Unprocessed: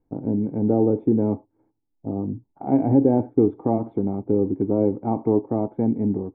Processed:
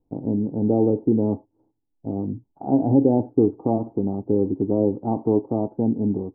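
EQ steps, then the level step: LPF 1000 Hz 24 dB/oct; 0.0 dB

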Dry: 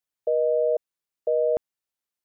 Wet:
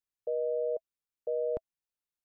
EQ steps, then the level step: low shelf 130 Hz +10 dB; notch 650 Hz, Q 12; -8.5 dB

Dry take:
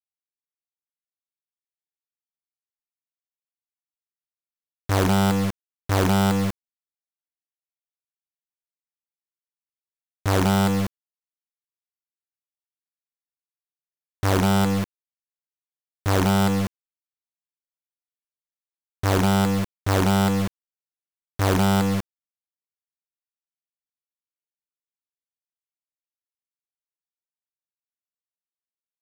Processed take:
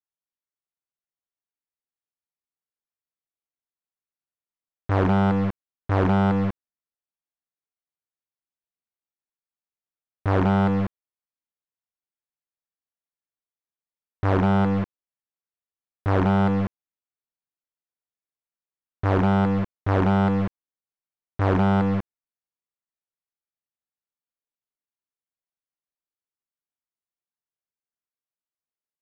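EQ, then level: LPF 1800 Hz 12 dB/oct; 0.0 dB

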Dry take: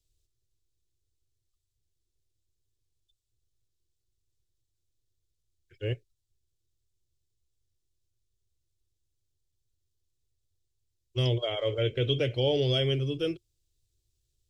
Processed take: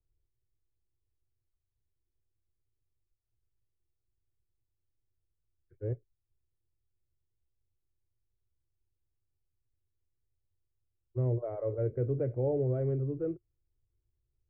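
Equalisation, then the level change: Gaussian blur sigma 7.8 samples; -2.5 dB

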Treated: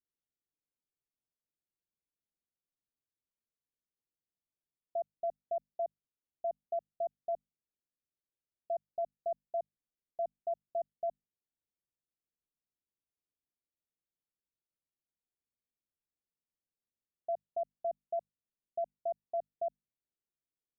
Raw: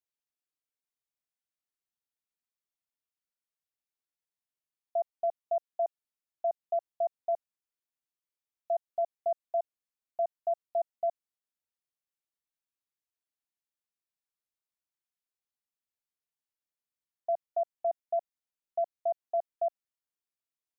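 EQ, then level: Gaussian blur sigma 16 samples; notches 50/100/150/200/250 Hz; +5.0 dB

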